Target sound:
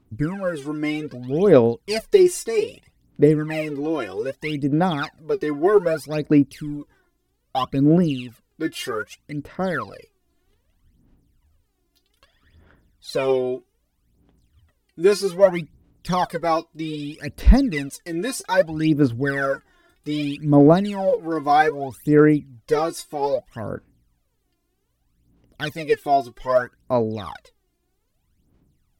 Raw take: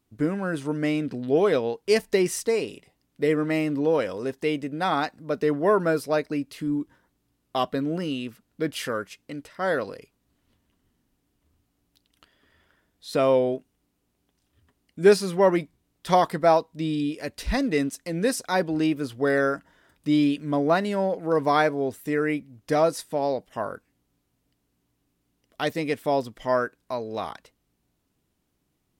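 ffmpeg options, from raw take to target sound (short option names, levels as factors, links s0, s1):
-af "aphaser=in_gain=1:out_gain=1:delay=2.9:decay=0.79:speed=0.63:type=sinusoidal,lowshelf=f=230:g=6.5,volume=0.708"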